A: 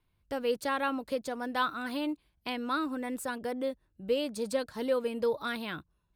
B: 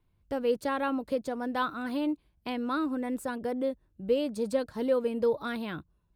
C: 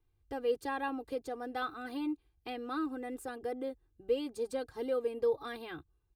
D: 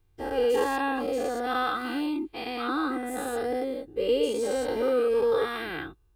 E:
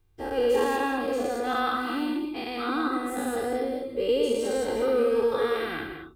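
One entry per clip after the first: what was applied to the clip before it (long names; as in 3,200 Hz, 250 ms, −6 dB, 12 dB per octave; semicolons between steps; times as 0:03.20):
tilt shelving filter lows +4.5 dB
comb filter 2.5 ms, depth 97%; level −8 dB
every bin's largest magnitude spread in time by 240 ms; level +3 dB
reverb whose tail is shaped and stops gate 230 ms rising, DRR 5.5 dB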